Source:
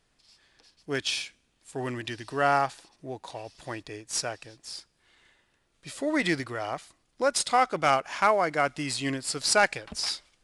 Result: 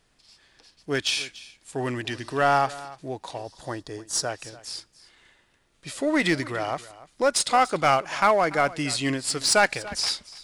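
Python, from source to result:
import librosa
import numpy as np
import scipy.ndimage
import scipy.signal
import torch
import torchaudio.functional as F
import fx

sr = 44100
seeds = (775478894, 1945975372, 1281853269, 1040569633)

p1 = fx.peak_eq(x, sr, hz=2400.0, db=-14.0, octaves=0.5, at=(3.38, 4.29))
p2 = np.clip(p1, -10.0 ** (-22.5 / 20.0), 10.0 ** (-22.5 / 20.0))
p3 = p1 + (p2 * librosa.db_to_amplitude(-4.0))
y = p3 + 10.0 ** (-18.5 / 20.0) * np.pad(p3, (int(289 * sr / 1000.0), 0))[:len(p3)]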